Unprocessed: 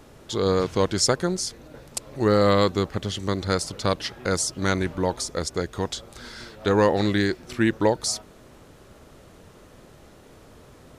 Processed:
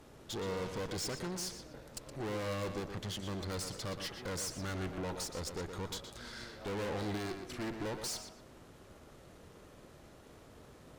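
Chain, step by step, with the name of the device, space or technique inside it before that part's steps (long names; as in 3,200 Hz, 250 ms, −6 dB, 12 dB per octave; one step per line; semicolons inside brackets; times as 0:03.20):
rockabilly slapback (tube saturation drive 32 dB, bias 0.6; tape delay 120 ms, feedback 32%, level −6 dB, low-pass 4,600 Hz)
level −4.5 dB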